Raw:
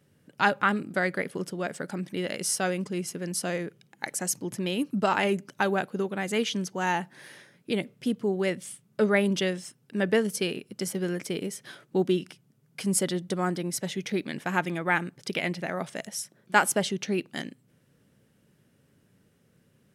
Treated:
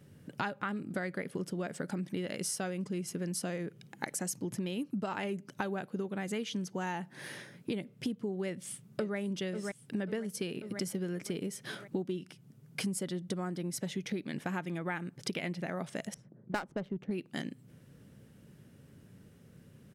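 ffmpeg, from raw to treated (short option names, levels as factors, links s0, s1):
-filter_complex "[0:a]asplit=2[s0][s1];[s1]afade=t=in:st=8.46:d=0.01,afade=t=out:st=9.17:d=0.01,aecho=0:1:540|1080|1620|2160|2700:0.298538|0.149269|0.0746346|0.0373173|0.0186586[s2];[s0][s2]amix=inputs=2:normalize=0,asettb=1/sr,asplit=3[s3][s4][s5];[s3]atrim=end=16.144[s6];[s4]atrim=start=16.14:end=17.11,asetpts=PTS-STARTPTS,afade=t=in:d=0.004:c=qsin,afade=t=out:st=0.966:d=0.004:c=qsin,adynamicsmooth=sensitivity=1.5:basefreq=630[s7];[s5]atrim=start=17.106[s8];[s6][s7]acrossfade=d=0.004:c1=hsin:c2=qsin[s9];[s9][s8]acrossfade=d=0.004:c1=qsin:c2=hsin,lowshelf=f=280:g=7.5,acompressor=threshold=0.0158:ratio=8,volume=1.41"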